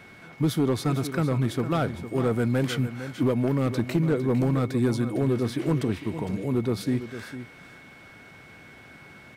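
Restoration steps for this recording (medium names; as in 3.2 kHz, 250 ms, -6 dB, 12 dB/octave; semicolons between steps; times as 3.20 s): clip repair -16 dBFS; band-stop 2.2 kHz, Q 30; inverse comb 455 ms -12 dB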